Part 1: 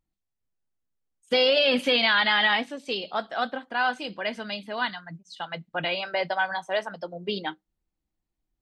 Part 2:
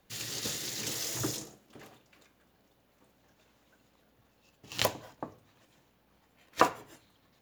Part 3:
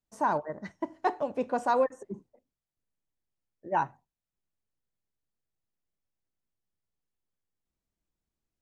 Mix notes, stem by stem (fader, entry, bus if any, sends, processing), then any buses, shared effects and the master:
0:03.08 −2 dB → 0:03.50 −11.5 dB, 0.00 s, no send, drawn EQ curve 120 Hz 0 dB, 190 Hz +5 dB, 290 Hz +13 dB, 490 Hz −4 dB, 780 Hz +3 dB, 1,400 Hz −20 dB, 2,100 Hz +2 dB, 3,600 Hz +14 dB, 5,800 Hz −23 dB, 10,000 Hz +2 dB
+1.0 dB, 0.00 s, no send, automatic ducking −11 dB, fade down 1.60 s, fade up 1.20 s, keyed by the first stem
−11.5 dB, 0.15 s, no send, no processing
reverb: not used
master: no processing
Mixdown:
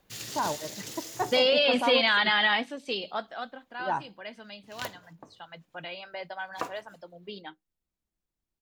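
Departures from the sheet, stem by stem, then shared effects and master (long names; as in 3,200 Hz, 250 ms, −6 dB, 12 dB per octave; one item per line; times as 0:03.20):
stem 1: missing drawn EQ curve 120 Hz 0 dB, 190 Hz +5 dB, 290 Hz +13 dB, 490 Hz −4 dB, 780 Hz +3 dB, 1,400 Hz −20 dB, 2,100 Hz +2 dB, 3,600 Hz +14 dB, 5,800 Hz −23 dB, 10,000 Hz +2 dB
stem 3 −11.5 dB → −2.5 dB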